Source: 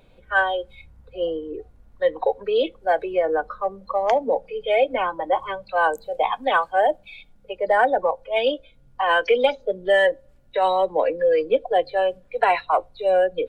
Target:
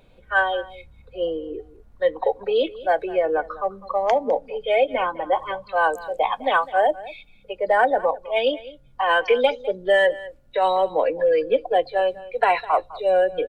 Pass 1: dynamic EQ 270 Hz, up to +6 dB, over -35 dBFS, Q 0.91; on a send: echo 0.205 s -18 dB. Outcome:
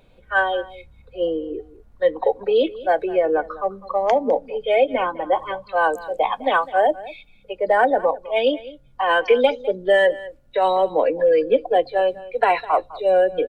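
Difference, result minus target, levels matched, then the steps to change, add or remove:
250 Hz band +3.5 dB
remove: dynamic EQ 270 Hz, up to +6 dB, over -35 dBFS, Q 0.91

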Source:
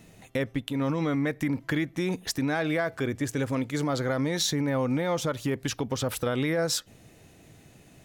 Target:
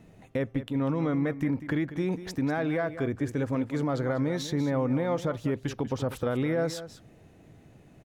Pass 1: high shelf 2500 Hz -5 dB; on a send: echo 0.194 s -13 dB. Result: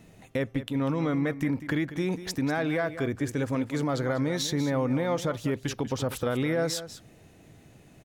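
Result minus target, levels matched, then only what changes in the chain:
4000 Hz band +6.0 dB
change: high shelf 2500 Hz -14 dB

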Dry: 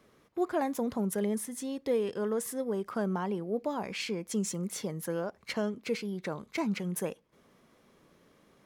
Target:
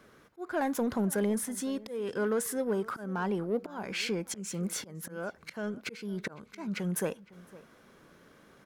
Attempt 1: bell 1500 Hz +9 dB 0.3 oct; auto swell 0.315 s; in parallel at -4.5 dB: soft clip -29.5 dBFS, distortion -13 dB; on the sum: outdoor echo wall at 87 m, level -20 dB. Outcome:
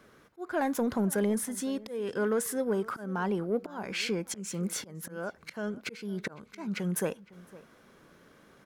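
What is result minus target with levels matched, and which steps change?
soft clip: distortion -6 dB
change: soft clip -36.5 dBFS, distortion -7 dB

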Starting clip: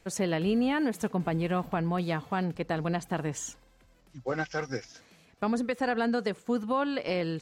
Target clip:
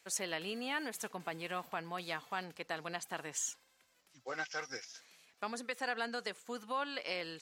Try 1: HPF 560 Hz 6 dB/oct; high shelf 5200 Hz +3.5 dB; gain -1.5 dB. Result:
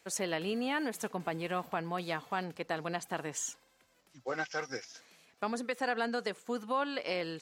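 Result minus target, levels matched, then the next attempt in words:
500 Hz band +3.0 dB
HPF 1600 Hz 6 dB/oct; high shelf 5200 Hz +3.5 dB; gain -1.5 dB

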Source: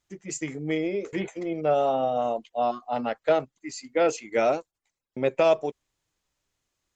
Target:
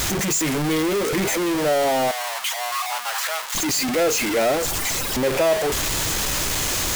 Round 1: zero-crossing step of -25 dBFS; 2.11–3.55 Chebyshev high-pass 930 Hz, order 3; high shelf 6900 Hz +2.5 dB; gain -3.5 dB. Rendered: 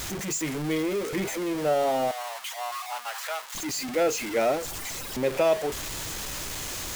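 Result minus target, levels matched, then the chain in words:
zero-crossing step: distortion -7 dB
zero-crossing step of -14 dBFS; 2.11–3.55 Chebyshev high-pass 930 Hz, order 3; high shelf 6900 Hz +2.5 dB; gain -3.5 dB

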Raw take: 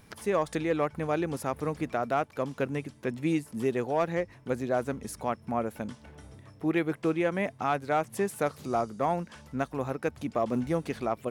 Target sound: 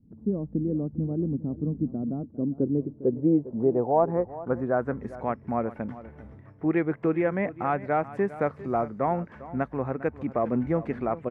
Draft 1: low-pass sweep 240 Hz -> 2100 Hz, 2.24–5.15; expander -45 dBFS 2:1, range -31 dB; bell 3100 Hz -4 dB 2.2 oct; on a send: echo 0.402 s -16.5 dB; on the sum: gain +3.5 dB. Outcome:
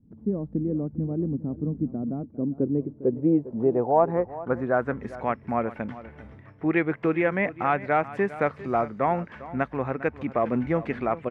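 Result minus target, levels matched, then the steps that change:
4000 Hz band +9.0 dB
change: bell 3100 Hz -14.5 dB 2.2 oct

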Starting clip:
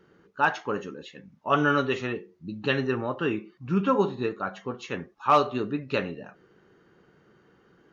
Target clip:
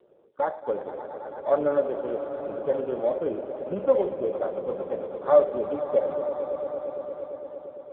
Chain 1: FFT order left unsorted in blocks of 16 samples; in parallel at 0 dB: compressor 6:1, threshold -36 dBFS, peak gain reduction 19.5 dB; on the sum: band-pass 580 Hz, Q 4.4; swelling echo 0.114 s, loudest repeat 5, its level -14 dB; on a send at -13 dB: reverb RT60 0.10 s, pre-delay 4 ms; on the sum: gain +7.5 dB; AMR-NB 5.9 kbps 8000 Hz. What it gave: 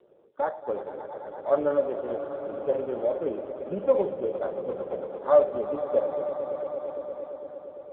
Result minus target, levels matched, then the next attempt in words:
compressor: peak gain reduction +6 dB
FFT order left unsorted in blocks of 16 samples; in parallel at 0 dB: compressor 6:1, threshold -29 dBFS, peak gain reduction 13.5 dB; on the sum: band-pass 580 Hz, Q 4.4; swelling echo 0.114 s, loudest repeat 5, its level -14 dB; on a send at -13 dB: reverb RT60 0.10 s, pre-delay 4 ms; on the sum: gain +7.5 dB; AMR-NB 5.9 kbps 8000 Hz

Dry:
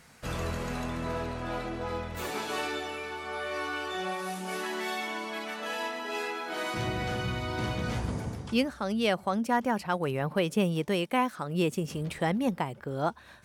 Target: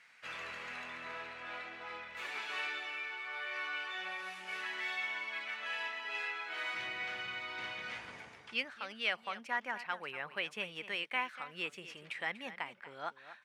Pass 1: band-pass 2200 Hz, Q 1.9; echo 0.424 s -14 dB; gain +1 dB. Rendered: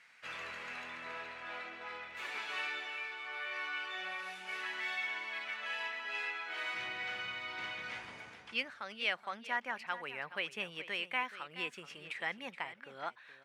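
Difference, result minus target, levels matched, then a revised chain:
echo 0.182 s late
band-pass 2200 Hz, Q 1.9; echo 0.242 s -14 dB; gain +1 dB

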